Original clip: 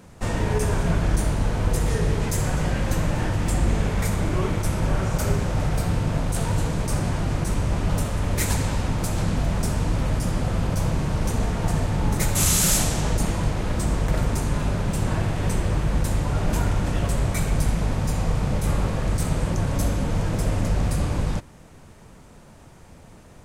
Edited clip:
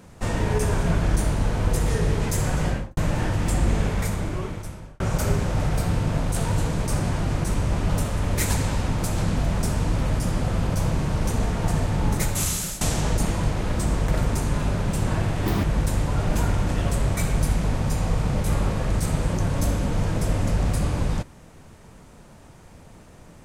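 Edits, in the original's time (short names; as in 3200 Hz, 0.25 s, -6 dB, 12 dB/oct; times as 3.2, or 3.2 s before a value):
2.67–2.97 studio fade out
3.84–5 fade out
12.12–12.81 fade out, to -18 dB
15.46–15.81 speed 199%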